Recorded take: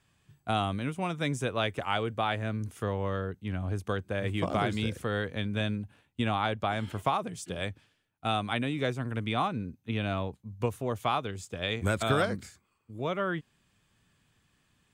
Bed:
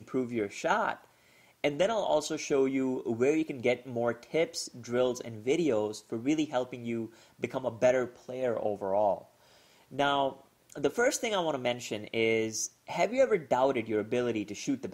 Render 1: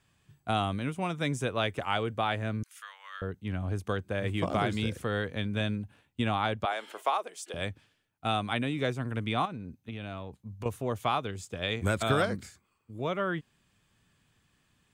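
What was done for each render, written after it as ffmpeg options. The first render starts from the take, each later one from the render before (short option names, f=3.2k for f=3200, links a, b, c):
-filter_complex "[0:a]asettb=1/sr,asplit=3[a][b][c];[a]atrim=end=2.634[d];[b]atrim=start=2.63:end=3.22,asetpts=PTS-STARTPTS,afade=t=in:d=0.004:c=qsin,afade=t=out:st=0.586:d=0.004:c=qsin,highpass=f=1.4k:w=0.5412,highpass=f=1.4k:w=1.3066[e];[c]atrim=start=3.216[f];[d][e]acrossfade=d=0.004:c1=hsin:c2=qsin[g];[g][f]acrossfade=d=0.004:c1=qsin:c2=hsin,asettb=1/sr,asplit=3[h][i][j];[h]atrim=end=6.654[k];[i]atrim=start=6.65:end=7.54,asetpts=PTS-STARTPTS,afade=t=in:d=0.004:c=qsin,afade=t=out:st=0.886:d=0.004:c=qsin,highpass=f=410:w=0.5412,highpass=f=410:w=1.3066[l];[j]atrim=start=7.536[m];[k][l]acrossfade=d=0.004:c1=hsin:c2=qsin[n];[n][m]acrossfade=d=0.004:c1=qsin:c2=hsin,asettb=1/sr,asplit=3[o][p][q];[o]atrim=end=9.454[r];[p]atrim=start=9.45:end=10.66,asetpts=PTS-STARTPTS,afade=t=in:d=0.004:c=qsin,afade=t=out:st=1.206:d=0.004:c=qsin,acompressor=threshold=-35dB:ratio=5:attack=3.2:release=140:knee=1:detection=peak[s];[q]atrim=start=10.656[t];[r][s]acrossfade=d=0.004:c1=hsin:c2=qsin[u];[u][t]acrossfade=d=0.004:c1=qsin:c2=hsin"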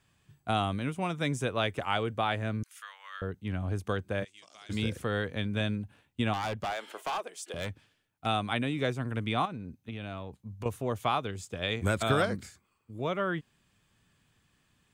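-filter_complex "[0:a]asplit=3[a][b][c];[a]afade=t=out:st=4.23:d=0.02[d];[b]bandpass=f=6.1k:t=q:w=2.8,afade=t=in:st=4.23:d=0.02,afade=t=out:st=4.69:d=0.02[e];[c]afade=t=in:st=4.69:d=0.02[f];[d][e][f]amix=inputs=3:normalize=0,asettb=1/sr,asplit=3[g][h][i];[g]atrim=end=6.334[j];[h]atrim=start=6.33:end=8.26,asetpts=PTS-STARTPTS,afade=t=in:d=0.004:c=qsin,afade=t=out:st=1.926:d=0.004:c=qsin,volume=29.5dB,asoftclip=hard,volume=-29.5dB[k];[i]atrim=start=8.256[l];[j][k]acrossfade=d=0.004:c1=hsin:c2=qsin[m];[m][l]acrossfade=d=0.004:c1=qsin:c2=hsin"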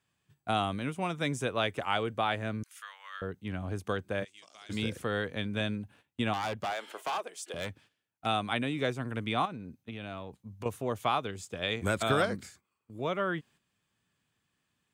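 -af "highpass=f=140:p=1,agate=range=-8dB:threshold=-58dB:ratio=16:detection=peak"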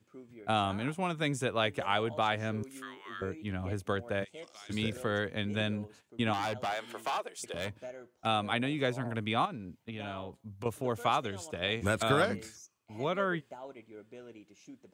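-filter_complex "[1:a]volume=-19.5dB[a];[0:a][a]amix=inputs=2:normalize=0"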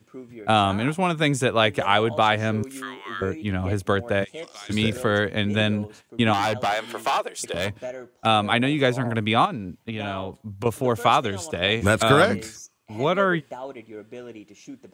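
-af "volume=10.5dB"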